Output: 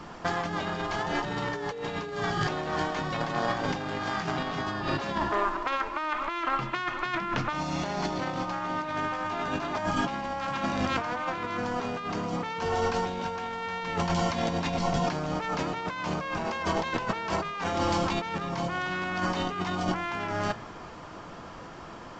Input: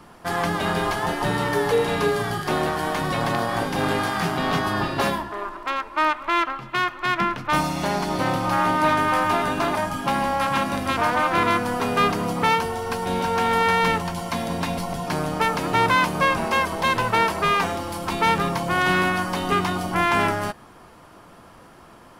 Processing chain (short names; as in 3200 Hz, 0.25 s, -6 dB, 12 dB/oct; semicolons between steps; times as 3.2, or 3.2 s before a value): de-hum 113.6 Hz, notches 2; on a send at -18 dB: reverb, pre-delay 3 ms; on the sum: limiter -16 dBFS, peak gain reduction 7.5 dB; negative-ratio compressor -29 dBFS, ratio -0.5; µ-law 128 kbps 16000 Hz